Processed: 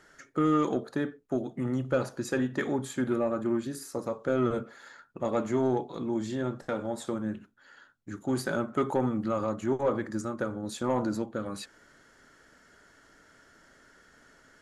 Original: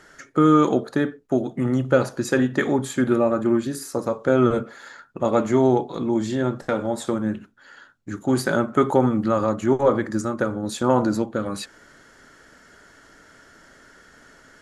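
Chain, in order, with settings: soft clip -8 dBFS, distortion -21 dB; gain -8 dB

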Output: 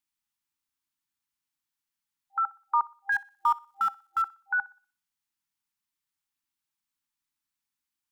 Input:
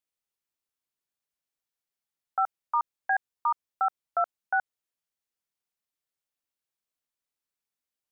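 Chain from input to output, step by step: 3.12–4.22 G.711 law mismatch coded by mu; FFT band-reject 350–790 Hz; on a send: thinning echo 61 ms, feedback 36%, high-pass 350 Hz, level -21 dB; on the sum: gain +2 dB

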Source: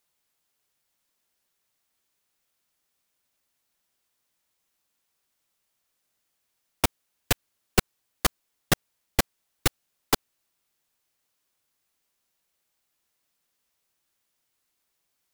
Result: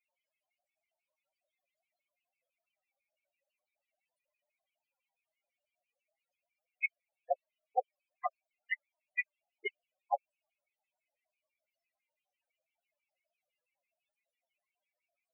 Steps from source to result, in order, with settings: LFO high-pass square 6 Hz 590–2200 Hz; loudest bins only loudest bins 4; gain +1 dB

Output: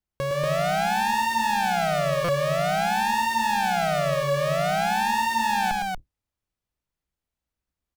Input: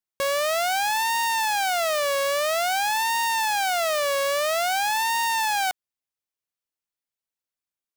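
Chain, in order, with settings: octaver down 2 oct, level +3 dB; tilt -2.5 dB/oct; limiter -20.5 dBFS, peak gain reduction 7.5 dB; loudspeakers at several distances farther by 38 m -5 dB, 81 m -2 dB; stuck buffer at 2.24, samples 256, times 7; gain +2.5 dB

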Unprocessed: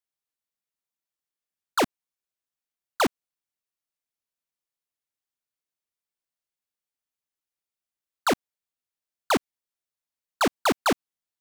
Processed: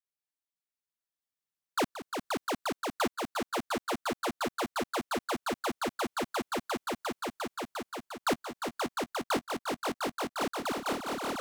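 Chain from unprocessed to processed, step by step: swelling echo 0.176 s, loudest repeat 8, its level -5 dB; vocal rider within 5 dB 0.5 s; gain -7 dB

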